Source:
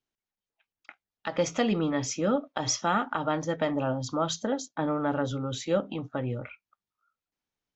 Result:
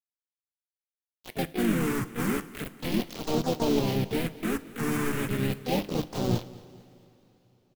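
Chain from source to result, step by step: median filter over 41 samples; envelope flanger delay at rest 12 ms, full sweep at -28.5 dBFS; bell 590 Hz -3 dB 0.67 oct; sample leveller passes 1; de-hum 64.85 Hz, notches 7; bit-crush 5-bit; phaser stages 4, 0.36 Hz, lowest notch 570–1800 Hz; harmoniser -4 st -8 dB, +4 st -11 dB, +7 st -3 dB; on a send: feedback echo 0.223 s, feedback 46%, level -20 dB; on the sum: two-slope reverb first 0.39 s, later 4.4 s, from -18 dB, DRR 13.5 dB

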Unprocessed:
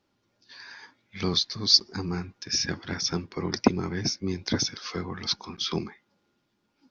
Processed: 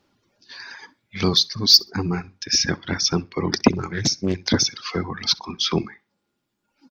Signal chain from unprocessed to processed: soft clip -10 dBFS, distortion -16 dB; on a send: feedback echo 64 ms, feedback 18%, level -13.5 dB; on the sum: reverb removal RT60 1.3 s; 3.77–4.44 Doppler distortion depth 0.33 ms; gain +8 dB

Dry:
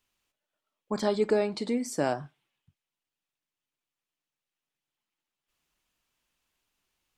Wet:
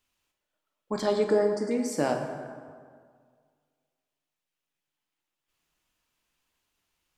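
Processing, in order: 1.24–1.71 brick-wall FIR band-stop 2100–4500 Hz; plate-style reverb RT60 1.9 s, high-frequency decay 0.55×, DRR 3.5 dB

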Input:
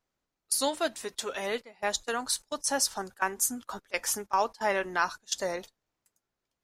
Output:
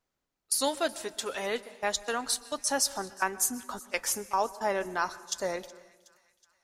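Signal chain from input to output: 4.12–5.44 bell 2400 Hz -6.5 dB 1.6 oct; thin delay 0.37 s, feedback 55%, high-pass 1700 Hz, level -21.5 dB; on a send at -18 dB: reverb RT60 1.2 s, pre-delay 0.116 s

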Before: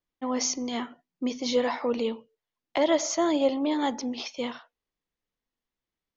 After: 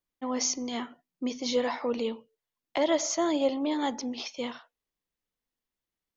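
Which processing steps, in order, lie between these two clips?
high shelf 6300 Hz +4.5 dB; gain -2.5 dB

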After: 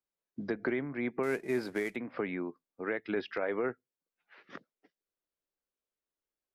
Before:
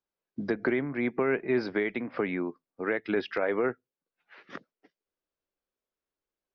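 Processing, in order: 1.23–1.96 CVSD 64 kbps; gain -5 dB

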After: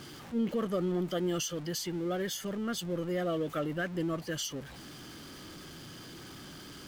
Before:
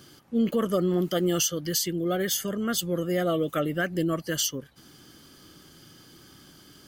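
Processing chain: zero-crossing step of -34 dBFS; high shelf 7500 Hz -10.5 dB; gain -7.5 dB

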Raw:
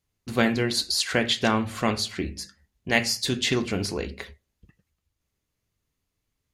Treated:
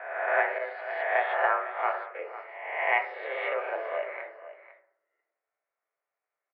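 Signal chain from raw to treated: spectral swells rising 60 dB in 1.14 s; 0.58–2.15 expander -18 dBFS; echo 0.502 s -14 dB; on a send at -4.5 dB: reverb RT60 0.70 s, pre-delay 3 ms; on the sum: mistuned SSB +150 Hz 400–2000 Hz; gain -3.5 dB

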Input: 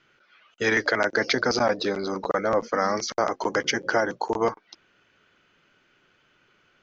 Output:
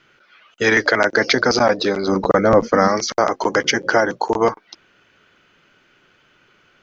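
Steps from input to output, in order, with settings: 2.08–2.88 low shelf 320 Hz +10.5 dB; gain +7 dB

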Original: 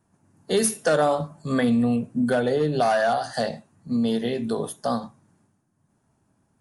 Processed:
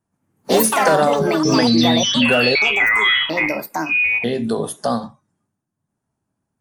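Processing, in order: in parallel at +2.5 dB: compressor, threshold -34 dBFS, peak gain reduction 16 dB; on the sum: spectral noise reduction 19 dB; 2.55–4.24 inverted band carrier 2700 Hz; echoes that change speed 0.12 s, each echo +5 st, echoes 3; gain +2.5 dB

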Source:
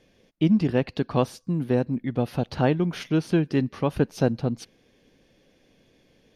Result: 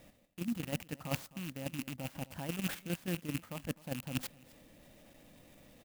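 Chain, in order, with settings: rattling part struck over -34 dBFS, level -19 dBFS; reverse; compressor 12:1, threshold -35 dBFS, peak gain reduction 20.5 dB; reverse; high shelf 4900 Hz -2.5 dB; on a send: echo 0.28 s -19.5 dB; on the sum: level quantiser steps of 9 dB; speed mistake 44.1 kHz file played as 48 kHz; bell 400 Hz -12 dB 0.42 oct; clock jitter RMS 0.051 ms; gain +5.5 dB

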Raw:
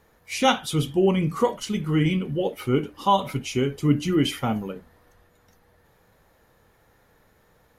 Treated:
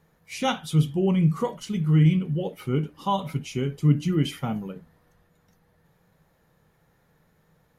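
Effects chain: bell 160 Hz +13.5 dB 0.46 oct; gain -6 dB

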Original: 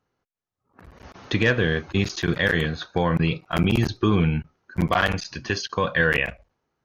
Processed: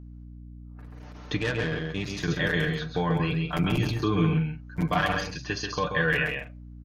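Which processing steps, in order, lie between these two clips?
comb 6.7 ms, depth 62%; on a send: loudspeakers at several distances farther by 46 m -5 dB, 61 m -12 dB; 1.37–2.22 on the sum: tube stage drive 15 dB, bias 0.55; hum 60 Hz, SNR 15 dB; gain -6.5 dB

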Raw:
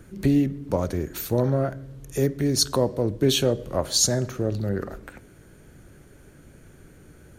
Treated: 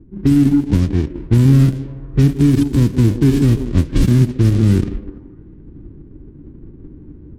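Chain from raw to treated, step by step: spectral whitening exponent 0.1; AGC gain up to 8 dB; resonant low shelf 450 Hz +13.5 dB, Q 3; notch 1300 Hz, Q 23; on a send: delay with a stepping band-pass 0.167 s, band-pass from 320 Hz, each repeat 0.7 oct, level -9 dB; on the sum: low-pass opened by the level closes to 700 Hz, open at -10 dBFS; limiter -5 dBFS, peak gain reduction 9 dB; added harmonics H 7 -25 dB, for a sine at -6.5 dBFS; RIAA curve playback; gain -5 dB

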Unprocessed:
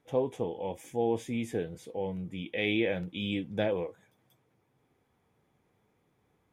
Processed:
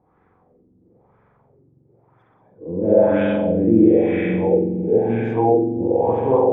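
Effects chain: whole clip reversed; spring tank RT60 3.7 s, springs 44 ms, chirp 30 ms, DRR -4 dB; LFO low-pass sine 1 Hz 270–1500 Hz; gain +7.5 dB

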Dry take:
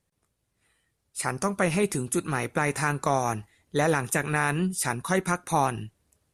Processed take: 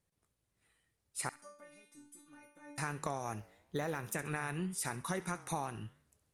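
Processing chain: compressor, threshold -28 dBFS, peak gain reduction 10 dB; flange 1 Hz, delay 9.5 ms, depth 9.9 ms, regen -89%; 1.29–2.78 metallic resonator 290 Hz, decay 0.57 s, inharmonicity 0.002; on a send: thin delay 67 ms, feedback 32%, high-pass 1700 Hz, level -14 dB; 3.38–4.14 on the sum: decimation joined by straight lines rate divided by 2×; gain -1.5 dB

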